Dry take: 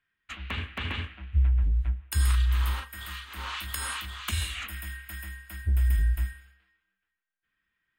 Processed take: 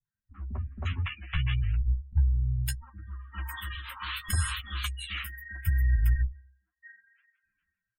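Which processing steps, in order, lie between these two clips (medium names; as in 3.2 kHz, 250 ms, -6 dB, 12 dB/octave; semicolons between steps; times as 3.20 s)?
level rider gain up to 3 dB; dynamic bell 110 Hz, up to +5 dB, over -39 dBFS, Q 2.6; valve stage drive 20 dB, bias 0.75; spectral gate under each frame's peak -15 dB strong; flange 0.74 Hz, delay 6.6 ms, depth 8.5 ms, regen +19%; in parallel at -1 dB: compression, threshold -43 dBFS, peak gain reduction 18.5 dB; on the sum: three bands offset in time lows, mids, highs 50/560 ms, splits 260/950 Hz; trim +3.5 dB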